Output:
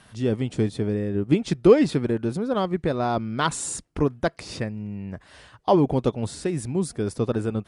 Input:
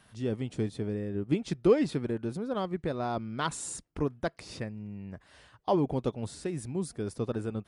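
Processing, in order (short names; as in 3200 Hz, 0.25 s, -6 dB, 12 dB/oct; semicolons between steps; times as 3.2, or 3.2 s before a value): steep low-pass 11000 Hz; gain +8 dB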